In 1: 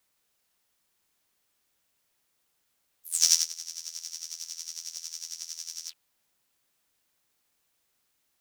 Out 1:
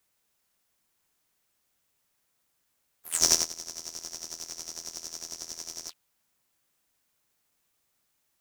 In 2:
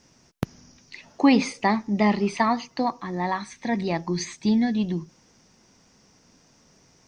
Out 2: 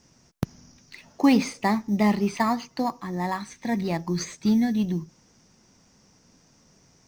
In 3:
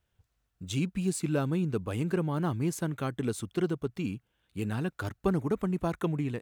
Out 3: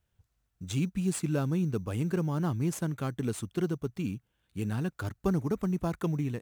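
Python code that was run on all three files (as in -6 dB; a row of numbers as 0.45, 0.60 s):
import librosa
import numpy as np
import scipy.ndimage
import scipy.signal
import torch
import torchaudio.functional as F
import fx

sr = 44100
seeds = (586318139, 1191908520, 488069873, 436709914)

p1 = fx.bass_treble(x, sr, bass_db=8, treble_db=4)
p2 = fx.sample_hold(p1, sr, seeds[0], rate_hz=6000.0, jitter_pct=0)
p3 = p1 + F.gain(torch.from_numpy(p2), -11.0).numpy()
p4 = fx.low_shelf(p3, sr, hz=240.0, db=-5.5)
y = F.gain(torch.from_numpy(p4), -4.0).numpy()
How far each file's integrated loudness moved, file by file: -0.5, -1.0, 0.0 LU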